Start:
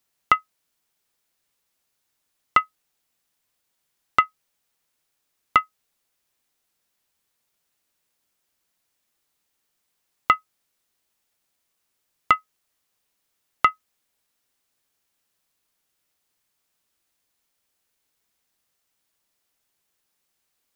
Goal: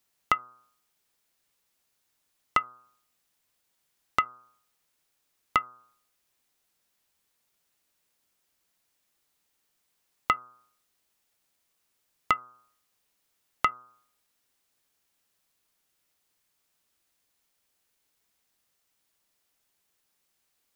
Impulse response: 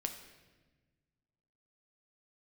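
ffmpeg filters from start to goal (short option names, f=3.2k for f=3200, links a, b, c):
-af "bandreject=f=123.8:t=h:w=4,bandreject=f=247.6:t=h:w=4,bandreject=f=371.4:t=h:w=4,bandreject=f=495.2:t=h:w=4,bandreject=f=619:t=h:w=4,bandreject=f=742.8:t=h:w=4,bandreject=f=866.6:t=h:w=4,bandreject=f=990.4:t=h:w=4,bandreject=f=1.1142k:t=h:w=4,bandreject=f=1.238k:t=h:w=4,bandreject=f=1.3618k:t=h:w=4,bandreject=f=1.4856k:t=h:w=4,bandreject=f=1.6094k:t=h:w=4,bandreject=f=1.7332k:t=h:w=4,acompressor=threshold=-32dB:ratio=1.5"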